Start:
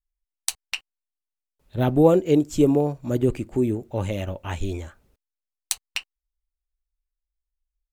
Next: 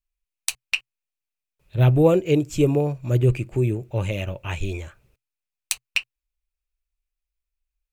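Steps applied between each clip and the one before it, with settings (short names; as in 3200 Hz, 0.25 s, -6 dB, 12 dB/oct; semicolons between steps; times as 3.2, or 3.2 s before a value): thirty-one-band EQ 125 Hz +10 dB, 250 Hz -9 dB, 800 Hz -4 dB, 2500 Hz +10 dB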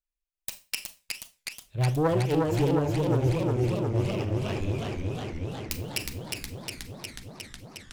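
self-modulated delay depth 0.53 ms; Schroeder reverb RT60 0.3 s, combs from 29 ms, DRR 10 dB; warbling echo 0.364 s, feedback 78%, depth 145 cents, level -3 dB; gain -8 dB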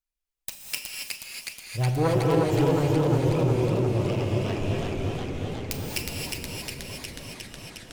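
non-linear reverb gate 0.3 s rising, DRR 0.5 dB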